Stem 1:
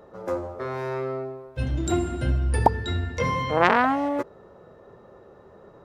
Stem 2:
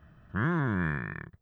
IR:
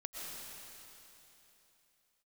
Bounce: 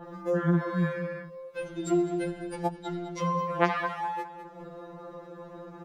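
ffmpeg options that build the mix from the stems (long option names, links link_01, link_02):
-filter_complex "[0:a]acompressor=mode=upward:threshold=-30dB:ratio=2.5,adynamicequalizer=threshold=0.0251:dfrequency=1800:dqfactor=0.7:tfrequency=1800:tqfactor=0.7:attack=5:release=100:ratio=0.375:range=1.5:mode=boostabove:tftype=highshelf,volume=-1dB,asplit=2[link_01][link_02];[link_02]volume=-14.5dB[link_03];[1:a]volume=2dB[link_04];[link_03]aecho=0:1:205|410|615|820:1|0.3|0.09|0.027[link_05];[link_01][link_04][link_05]amix=inputs=3:normalize=0,acrossover=split=170[link_06][link_07];[link_07]acompressor=threshold=-33dB:ratio=1.5[link_08];[link_06][link_08]amix=inputs=2:normalize=0,afftfilt=real='re*2.83*eq(mod(b,8),0)':imag='im*2.83*eq(mod(b,8),0)':win_size=2048:overlap=0.75"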